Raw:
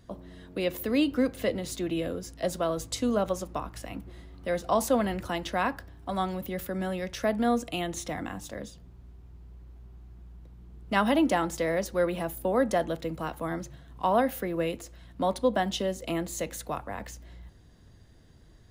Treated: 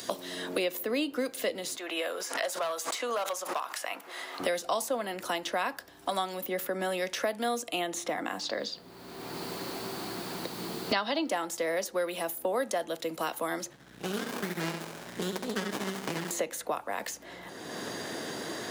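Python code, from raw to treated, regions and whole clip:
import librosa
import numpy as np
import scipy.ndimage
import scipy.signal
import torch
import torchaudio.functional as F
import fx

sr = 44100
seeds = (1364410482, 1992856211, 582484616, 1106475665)

y = fx.chain(x, sr, fx.highpass(hz=840.0, slope=12),
    fx.clip_hard(threshold_db=-30.0),
    fx.pre_swell(db_per_s=90.0), at=(1.77, 4.4))
y = fx.chain(y, sr, fx.lowpass_res(hz=4500.0, q=8.0),
    fx.quant_dither(seeds[0], bits=12, dither='triangular'), at=(8.39, 11.29))
y = fx.chain(y, sr, fx.brickwall_bandstop(low_hz=240.0, high_hz=1400.0),
    fx.echo_feedback(ms=67, feedback_pct=54, wet_db=-6.0),
    fx.running_max(window=65), at=(13.73, 16.31))
y = scipy.signal.sosfilt(scipy.signal.butter(2, 180.0, 'highpass', fs=sr, output='sos'), y)
y = fx.bass_treble(y, sr, bass_db=-13, treble_db=4)
y = fx.band_squash(y, sr, depth_pct=100)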